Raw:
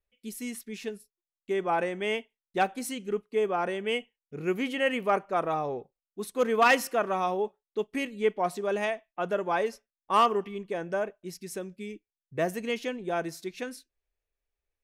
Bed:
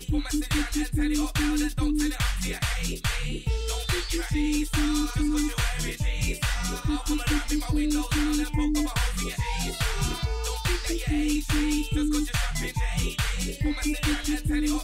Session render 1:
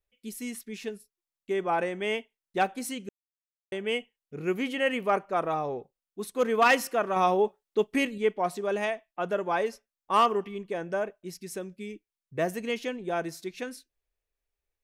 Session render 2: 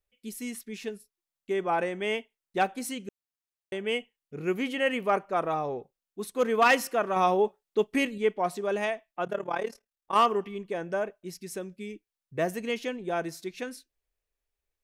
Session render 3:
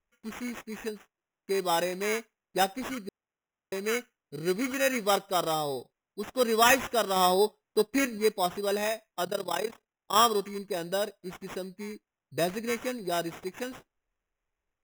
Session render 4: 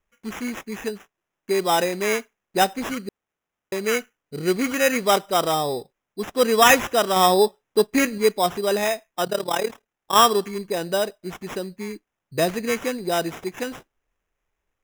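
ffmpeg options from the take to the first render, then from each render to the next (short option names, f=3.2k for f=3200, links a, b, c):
-filter_complex "[0:a]asettb=1/sr,asplit=3[a][b][c];[a]atrim=end=7.164[d];[b]atrim=start=7.16:end=8.18,asetpts=PTS-STARTPTS,afade=t=in:d=0.004:c=qsin,afade=t=out:st=1.016:d=0.004:c=qsin,acontrast=27[e];[c]atrim=start=8.176[f];[d][e]acrossfade=d=0.004:c1=hsin:c2=qsin[g];[g][f]acrossfade=d=0.004:c1=qsin:c2=hsin,asplit=3[h][i][j];[h]atrim=end=3.09,asetpts=PTS-STARTPTS,afade=t=out:st=3.086:d=0.004:c=hsin[k];[i]atrim=start=3.09:end=3.72,asetpts=PTS-STARTPTS,volume=0[l];[j]atrim=start=3.72,asetpts=PTS-STARTPTS,afade=t=in:d=0.004:c=hsin[m];[k][l][m]concat=n=3:v=0:a=1"
-filter_complex "[0:a]asplit=3[a][b][c];[a]afade=t=out:st=9.24:d=0.02[d];[b]tremolo=f=37:d=0.857,afade=t=in:st=9.24:d=0.02,afade=t=out:st=10.14:d=0.02[e];[c]afade=t=in:st=10.14:d=0.02[f];[d][e][f]amix=inputs=3:normalize=0"
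-af "acrusher=samples=10:mix=1:aa=0.000001"
-af "volume=7dB"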